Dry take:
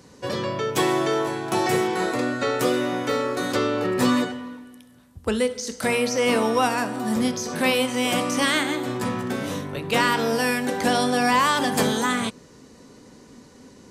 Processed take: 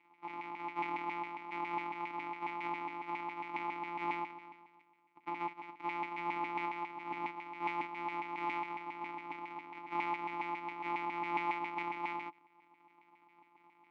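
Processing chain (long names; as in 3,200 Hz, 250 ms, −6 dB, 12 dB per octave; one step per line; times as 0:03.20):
samples sorted by size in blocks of 256 samples
auto-filter band-pass saw down 7.3 Hz 960–2,100 Hz
formant filter u
level +8.5 dB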